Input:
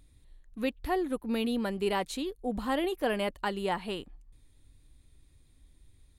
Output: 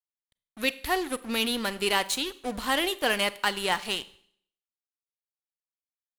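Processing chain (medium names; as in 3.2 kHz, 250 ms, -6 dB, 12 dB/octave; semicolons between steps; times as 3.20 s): crossover distortion -45.5 dBFS; tilt shelf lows -8 dB, about 1.2 kHz; Schroeder reverb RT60 0.62 s, combs from 32 ms, DRR 16.5 dB; trim +7 dB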